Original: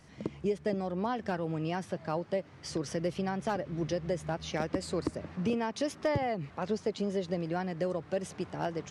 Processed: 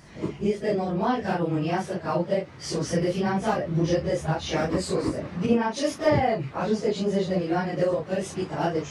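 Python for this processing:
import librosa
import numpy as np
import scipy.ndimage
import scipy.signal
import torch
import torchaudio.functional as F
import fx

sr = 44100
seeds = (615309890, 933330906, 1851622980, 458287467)

y = fx.phase_scramble(x, sr, seeds[0], window_ms=100)
y = fx.band_widen(y, sr, depth_pct=70, at=(5.46, 5.87))
y = y * librosa.db_to_amplitude(8.0)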